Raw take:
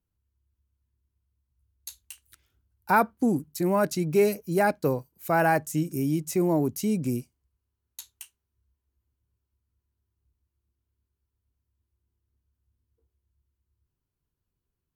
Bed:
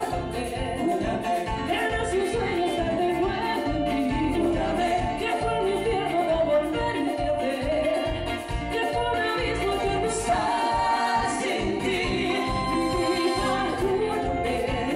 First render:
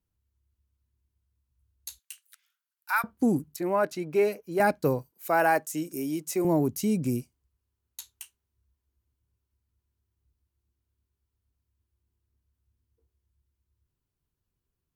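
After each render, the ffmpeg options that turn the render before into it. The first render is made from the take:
ffmpeg -i in.wav -filter_complex "[0:a]asettb=1/sr,asplit=3[link_01][link_02][link_03];[link_01]atrim=end=1.994[link_04];[link_02]atrim=start=1.99:end=3.04,asetpts=PTS-STARTPTS,afade=type=in:duration=0.004:curve=qsin,afade=type=out:start_time=1.046:duration=0.004:curve=qsin,highpass=frequency=1200:width=0.5412,highpass=frequency=1200:width=1.3066[link_05];[link_03]atrim=start=3.036[link_06];[link_04][link_05]acrossfade=duration=0.004:curve1=hsin:curve2=qsin[link_07];[link_07][link_06]acrossfade=duration=0.004:curve1=qsin:curve2=hsin,asettb=1/sr,asplit=3[link_08][link_09][link_10];[link_08]atrim=end=3.564[link_11];[link_09]atrim=start=3.56:end=4.6,asetpts=PTS-STARTPTS,afade=type=in:duration=0.004:curve=qsin,afade=type=out:start_time=1.036:duration=0.004:curve=qsin,bass=frequency=250:gain=-14,treble=frequency=4000:gain=-11[link_12];[link_10]atrim=start=4.596[link_13];[link_11][link_12]acrossfade=duration=0.004:curve1=hsin:curve2=qsin[link_14];[link_14][link_13]acrossfade=duration=0.004:curve1=qsin:curve2=hsin,asettb=1/sr,asplit=3[link_15][link_16][link_17];[link_15]atrim=end=5.114[link_18];[link_16]atrim=start=5.11:end=6.45,asetpts=PTS-STARTPTS,afade=type=in:duration=0.004:curve=qsin,afade=type=out:start_time=1.336:duration=0.004:curve=qsin,highpass=320[link_19];[link_17]atrim=start=6.446[link_20];[link_18][link_19]acrossfade=duration=0.004:curve1=hsin:curve2=qsin[link_21];[link_21][link_20]acrossfade=duration=0.004:curve1=qsin:curve2=hsin" out.wav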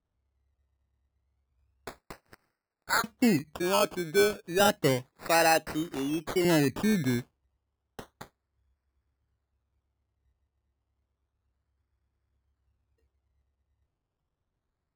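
ffmpeg -i in.wav -af "acrusher=samples=18:mix=1:aa=0.000001:lfo=1:lforange=10.8:lforate=0.31" out.wav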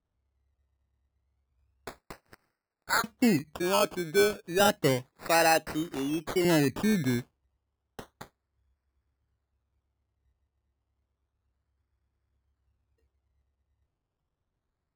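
ffmpeg -i in.wav -af anull out.wav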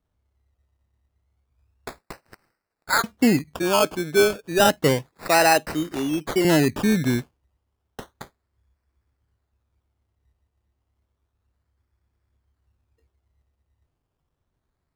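ffmpeg -i in.wav -af "volume=6dB" out.wav

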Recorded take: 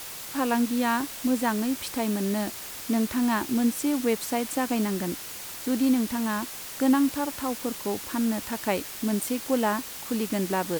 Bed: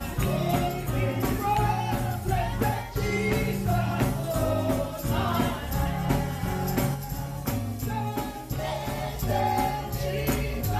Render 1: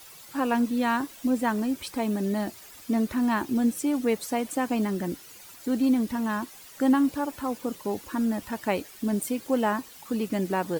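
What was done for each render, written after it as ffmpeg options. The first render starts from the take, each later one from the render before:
ffmpeg -i in.wav -af "afftdn=noise_reduction=12:noise_floor=-39" out.wav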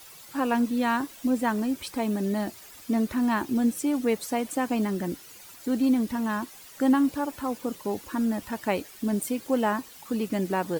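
ffmpeg -i in.wav -af anull out.wav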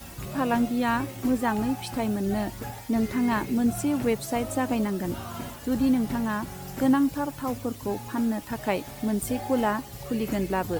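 ffmpeg -i in.wav -i bed.wav -filter_complex "[1:a]volume=-11dB[link_01];[0:a][link_01]amix=inputs=2:normalize=0" out.wav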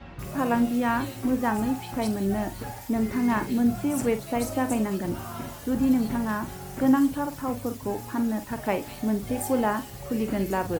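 ffmpeg -i in.wav -filter_complex "[0:a]asplit=2[link_01][link_02];[link_02]adelay=46,volume=-10.5dB[link_03];[link_01][link_03]amix=inputs=2:normalize=0,acrossover=split=3400[link_04][link_05];[link_05]adelay=190[link_06];[link_04][link_06]amix=inputs=2:normalize=0" out.wav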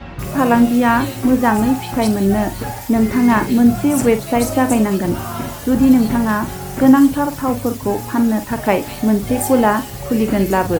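ffmpeg -i in.wav -af "volume=11dB,alimiter=limit=-1dB:level=0:latency=1" out.wav

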